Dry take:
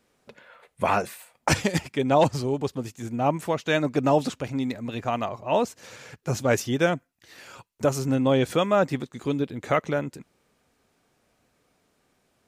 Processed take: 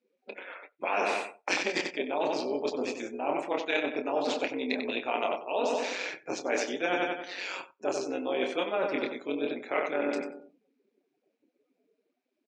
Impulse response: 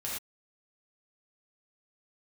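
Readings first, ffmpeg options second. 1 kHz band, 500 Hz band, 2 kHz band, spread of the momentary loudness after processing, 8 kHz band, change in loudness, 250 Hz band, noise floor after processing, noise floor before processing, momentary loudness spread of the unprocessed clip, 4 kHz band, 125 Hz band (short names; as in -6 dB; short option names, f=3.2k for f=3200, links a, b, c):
-5.5 dB, -5.0 dB, -1.0 dB, 7 LU, -7.0 dB, -5.5 dB, -8.0 dB, -80 dBFS, -70 dBFS, 10 LU, -2.0 dB, -26.5 dB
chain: -filter_complex "[0:a]tremolo=f=190:d=0.857,acontrast=29,asplit=2[a][b];[b]adelay=28,volume=-7.5dB[c];[a][c]amix=inputs=2:normalize=0,aecho=1:1:94|188|282|376|470:0.355|0.153|0.0656|0.0282|0.0121,areverse,acompressor=threshold=-30dB:ratio=20,areverse,afftdn=nr=28:nf=-55,highpass=f=280:w=0.5412,highpass=f=280:w=1.3066,equalizer=f=1.2k:t=q:w=4:g=-4,equalizer=f=2.4k:t=q:w=4:g=8,equalizer=f=3.9k:t=q:w=4:g=3,lowpass=f=6.3k:w=0.5412,lowpass=f=6.3k:w=1.3066,volume=5.5dB"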